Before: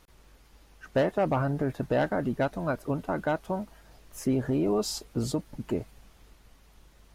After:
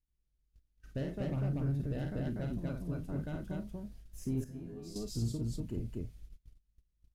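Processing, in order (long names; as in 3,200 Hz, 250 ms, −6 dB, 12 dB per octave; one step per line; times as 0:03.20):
double-tracking delay 35 ms −11.5 dB
on a send: loudspeakers that aren't time-aligned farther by 18 metres −5 dB, 83 metres −1 dB
on the sum: noise gate −48 dBFS, range −24 dB
guitar amp tone stack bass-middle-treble 10-0-1
in parallel at −9 dB: hard clipping −39.5 dBFS, distortion −13 dB
0:04.44–0:04.96: on the sum: tuned comb filter 83 Hz, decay 0.44 s, harmonics all, mix 90%
level +5.5 dB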